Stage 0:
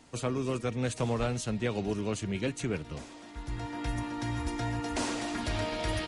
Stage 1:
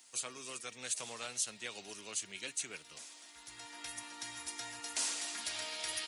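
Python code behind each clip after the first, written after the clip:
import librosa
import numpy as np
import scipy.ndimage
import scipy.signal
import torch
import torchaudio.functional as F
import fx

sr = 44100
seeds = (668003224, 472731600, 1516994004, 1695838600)

y = np.diff(x, prepend=0.0)
y = y * 10.0 ** (5.5 / 20.0)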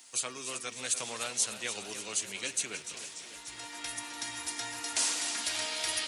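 y = fx.echo_warbled(x, sr, ms=295, feedback_pct=66, rate_hz=2.8, cents=107, wet_db=-11)
y = y * 10.0 ** (6.0 / 20.0)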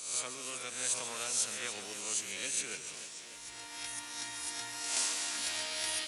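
y = fx.spec_swells(x, sr, rise_s=0.74)
y = y + 10.0 ** (-11.5 / 20.0) * np.pad(y, (int(141 * sr / 1000.0), 0))[:len(y)]
y = y * 10.0 ** (-5.5 / 20.0)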